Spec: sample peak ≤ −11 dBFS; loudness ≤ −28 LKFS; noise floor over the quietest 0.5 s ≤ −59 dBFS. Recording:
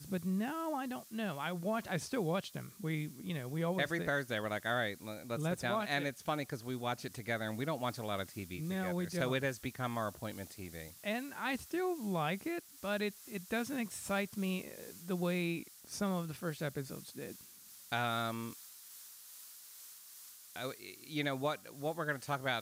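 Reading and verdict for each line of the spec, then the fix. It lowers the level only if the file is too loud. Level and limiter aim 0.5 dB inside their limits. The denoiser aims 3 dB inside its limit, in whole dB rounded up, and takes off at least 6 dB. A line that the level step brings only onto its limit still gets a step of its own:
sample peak −20.5 dBFS: in spec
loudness −38.0 LKFS: in spec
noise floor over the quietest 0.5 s −56 dBFS: out of spec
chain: broadband denoise 6 dB, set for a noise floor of −56 dBFS

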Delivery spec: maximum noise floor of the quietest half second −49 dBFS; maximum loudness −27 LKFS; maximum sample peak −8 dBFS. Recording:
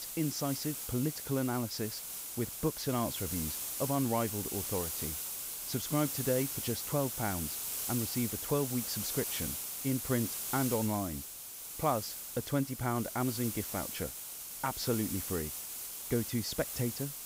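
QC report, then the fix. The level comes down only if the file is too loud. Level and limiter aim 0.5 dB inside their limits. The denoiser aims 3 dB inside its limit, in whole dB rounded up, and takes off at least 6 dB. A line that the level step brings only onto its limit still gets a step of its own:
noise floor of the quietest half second −45 dBFS: out of spec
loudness −34.0 LKFS: in spec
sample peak −17.0 dBFS: in spec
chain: broadband denoise 7 dB, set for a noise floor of −45 dBFS

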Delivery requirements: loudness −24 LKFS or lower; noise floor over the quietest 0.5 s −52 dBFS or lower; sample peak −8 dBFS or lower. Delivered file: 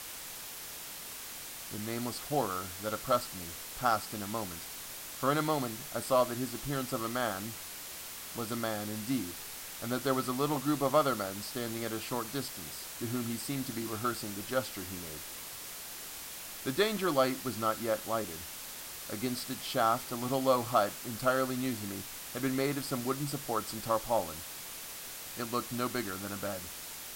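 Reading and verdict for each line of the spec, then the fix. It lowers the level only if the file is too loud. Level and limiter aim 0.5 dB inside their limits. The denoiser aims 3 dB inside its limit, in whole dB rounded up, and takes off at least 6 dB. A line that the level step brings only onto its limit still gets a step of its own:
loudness −34.0 LKFS: in spec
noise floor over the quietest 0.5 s −44 dBFS: out of spec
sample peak −13.5 dBFS: in spec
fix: broadband denoise 11 dB, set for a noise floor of −44 dBFS

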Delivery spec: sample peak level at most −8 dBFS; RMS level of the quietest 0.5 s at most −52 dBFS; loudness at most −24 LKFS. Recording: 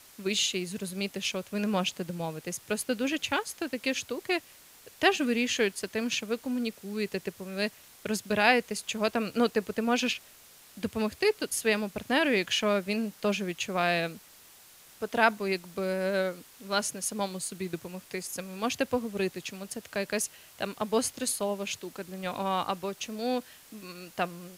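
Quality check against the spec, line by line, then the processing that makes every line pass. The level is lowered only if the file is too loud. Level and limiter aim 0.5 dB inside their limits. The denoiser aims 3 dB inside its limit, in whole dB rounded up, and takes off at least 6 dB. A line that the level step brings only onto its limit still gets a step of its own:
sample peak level −6.5 dBFS: out of spec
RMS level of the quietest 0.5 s −54 dBFS: in spec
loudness −30.0 LKFS: in spec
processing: brickwall limiter −8.5 dBFS

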